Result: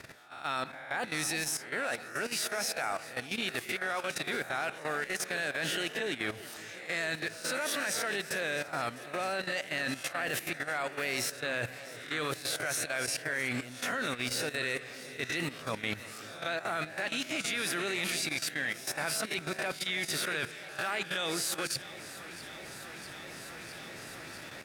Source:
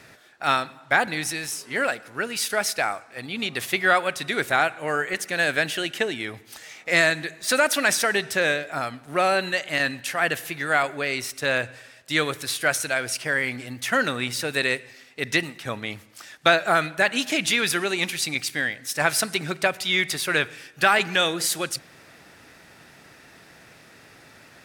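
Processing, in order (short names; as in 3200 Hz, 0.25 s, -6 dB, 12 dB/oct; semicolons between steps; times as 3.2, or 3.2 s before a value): spectral swells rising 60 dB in 0.45 s; reverse; compressor 4:1, threshold -32 dBFS, peak gain reduction 17.5 dB; reverse; echo with dull and thin repeats by turns 0.327 s, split 910 Hz, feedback 88%, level -13.5 dB; level quantiser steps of 12 dB; gain +3 dB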